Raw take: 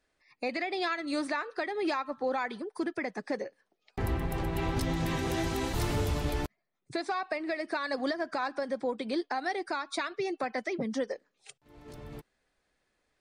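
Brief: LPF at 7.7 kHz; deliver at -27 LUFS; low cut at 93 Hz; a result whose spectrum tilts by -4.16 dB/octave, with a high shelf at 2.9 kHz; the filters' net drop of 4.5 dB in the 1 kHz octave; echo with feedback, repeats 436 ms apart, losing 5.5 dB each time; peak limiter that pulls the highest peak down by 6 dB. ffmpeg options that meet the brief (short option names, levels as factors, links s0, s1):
-af "highpass=93,lowpass=7700,equalizer=f=1000:t=o:g=-7.5,highshelf=f=2900:g=9,alimiter=limit=0.0631:level=0:latency=1,aecho=1:1:436|872|1308|1744|2180|2616|3052:0.531|0.281|0.149|0.079|0.0419|0.0222|0.0118,volume=2.24"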